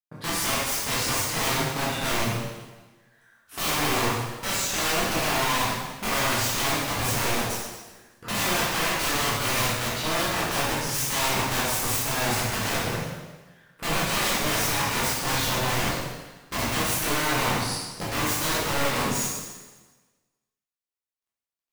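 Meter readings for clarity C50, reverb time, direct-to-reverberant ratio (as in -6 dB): -1.5 dB, 1.3 s, -8.5 dB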